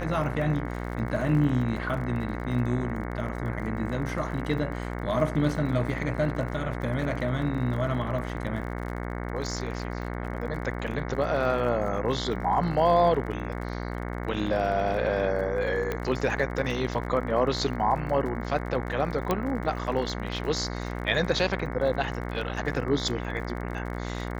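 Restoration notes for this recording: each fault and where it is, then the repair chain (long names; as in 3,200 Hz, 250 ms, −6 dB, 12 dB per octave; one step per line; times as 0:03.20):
mains buzz 60 Hz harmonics 37 −33 dBFS
surface crackle 38 per second −36 dBFS
0:15.92: click −16 dBFS
0:19.31: click −11 dBFS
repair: click removal
hum removal 60 Hz, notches 37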